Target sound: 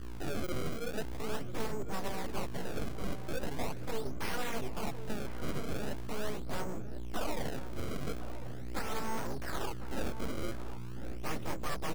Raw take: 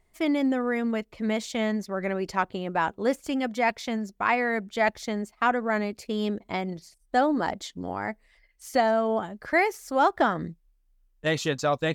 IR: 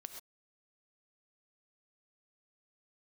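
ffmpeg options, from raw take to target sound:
-filter_complex "[0:a]lowpass=f=2000:p=1,aecho=1:1:5.1:0.43,acompressor=threshold=0.0224:ratio=5,aeval=exprs='val(0)+0.00447*(sin(2*PI*60*n/s)+sin(2*PI*2*60*n/s)/2+sin(2*PI*3*60*n/s)/3+sin(2*PI*4*60*n/s)/4+sin(2*PI*5*60*n/s)/5)':c=same,adynamicsmooth=sensitivity=7:basefreq=910,aresample=11025,asoftclip=type=tanh:threshold=0.0158,aresample=44100,flanger=delay=15.5:depth=4.6:speed=1.7,acrusher=samples=28:mix=1:aa=0.000001:lfo=1:lforange=44.8:lforate=0.41,aeval=exprs='abs(val(0))':c=same,asplit=2[s0][s1];[s1]adelay=1050,volume=0.316,highshelf=f=4000:g=-23.6[s2];[s0][s2]amix=inputs=2:normalize=0,volume=3.35"

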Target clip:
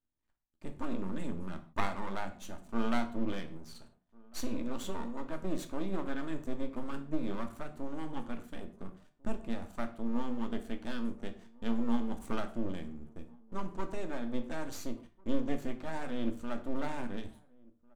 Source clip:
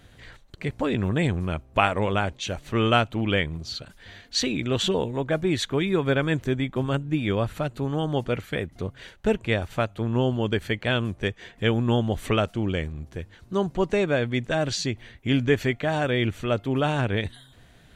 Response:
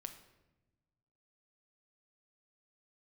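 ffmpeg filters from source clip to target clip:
-filter_complex "[0:a]agate=range=0.0398:threshold=0.01:ratio=16:detection=peak,equalizer=f=125:t=o:w=1:g=-4,equalizer=f=250:t=o:w=1:g=9,equalizer=f=500:t=o:w=1:g=-8,equalizer=f=1000:t=o:w=1:g=9,equalizer=f=2000:t=o:w=1:g=-10,equalizer=f=4000:t=o:w=1:g=-7,equalizer=f=8000:t=o:w=1:g=5,aeval=exprs='max(val(0),0)':c=same,asplit=2[s0][s1];[s1]adelay=1399,volume=0.0501,highshelf=f=4000:g=-31.5[s2];[s0][s2]amix=inputs=2:normalize=0[s3];[1:a]atrim=start_sample=2205,afade=t=out:st=0.37:d=0.01,atrim=end_sample=16758,asetrate=83790,aresample=44100[s4];[s3][s4]afir=irnorm=-1:irlink=0"

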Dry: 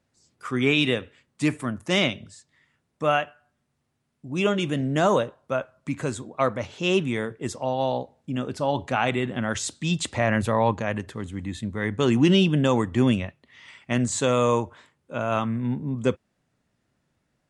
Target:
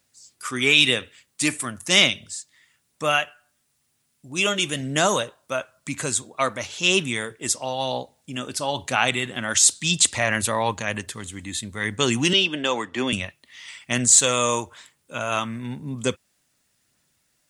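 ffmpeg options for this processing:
-filter_complex "[0:a]crystalizer=i=10:c=0,aphaser=in_gain=1:out_gain=1:delay=3.4:decay=0.22:speed=1:type=sinusoidal,asettb=1/sr,asplit=3[s0][s1][s2];[s0]atrim=end=12.334[s3];[s1]atrim=start=12.33:end=13.13,asetpts=PTS-STARTPTS,afade=t=in:d=0.004:c=qsin,afade=t=out:st=0.796:d=0.004:c=qsin,acrossover=split=240 5000:gain=0.126 1 0.112[s4][s5][s6];[s4][s5][s6]amix=inputs=3:normalize=0[s7];[s2]atrim=start=13.126[s8];[s3][s7]acrossfade=d=0.004:c1=hsin:c2=qsin[s9];[s9][s8]acrossfade=d=0.004:c1=qsin:c2=hsin,volume=0.562"

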